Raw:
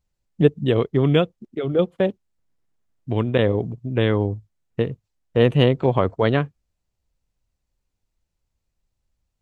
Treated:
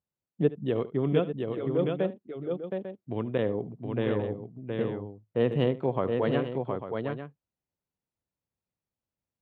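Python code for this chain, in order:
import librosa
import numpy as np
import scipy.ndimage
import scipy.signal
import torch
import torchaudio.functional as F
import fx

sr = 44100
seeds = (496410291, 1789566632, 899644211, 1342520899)

y = scipy.signal.sosfilt(scipy.signal.butter(2, 140.0, 'highpass', fs=sr, output='sos'), x)
y = fx.high_shelf(y, sr, hz=2500.0, db=-11.0)
y = fx.echo_multitap(y, sr, ms=(73, 719, 847), db=(-17.5, -4.5, -11.0))
y = F.gain(torch.from_numpy(y), -8.0).numpy()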